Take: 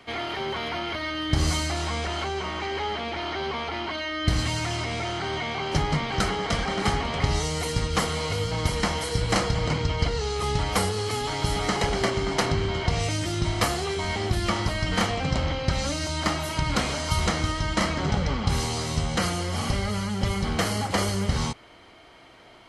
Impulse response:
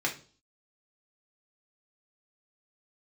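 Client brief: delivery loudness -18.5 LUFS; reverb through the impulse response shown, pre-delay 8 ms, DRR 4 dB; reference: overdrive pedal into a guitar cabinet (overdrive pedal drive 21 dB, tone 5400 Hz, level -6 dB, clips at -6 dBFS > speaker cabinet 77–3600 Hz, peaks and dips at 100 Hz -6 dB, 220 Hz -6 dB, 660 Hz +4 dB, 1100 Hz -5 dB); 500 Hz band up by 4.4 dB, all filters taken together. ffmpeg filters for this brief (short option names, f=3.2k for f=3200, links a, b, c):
-filter_complex "[0:a]equalizer=f=500:t=o:g=4.5,asplit=2[a][b];[1:a]atrim=start_sample=2205,adelay=8[c];[b][c]afir=irnorm=-1:irlink=0,volume=-12dB[d];[a][d]amix=inputs=2:normalize=0,asplit=2[e][f];[f]highpass=f=720:p=1,volume=21dB,asoftclip=type=tanh:threshold=-6dB[g];[e][g]amix=inputs=2:normalize=0,lowpass=f=5.4k:p=1,volume=-6dB,highpass=77,equalizer=f=100:t=q:w=4:g=-6,equalizer=f=220:t=q:w=4:g=-6,equalizer=f=660:t=q:w=4:g=4,equalizer=f=1.1k:t=q:w=4:g=-5,lowpass=f=3.6k:w=0.5412,lowpass=f=3.6k:w=1.3066,volume=-2dB"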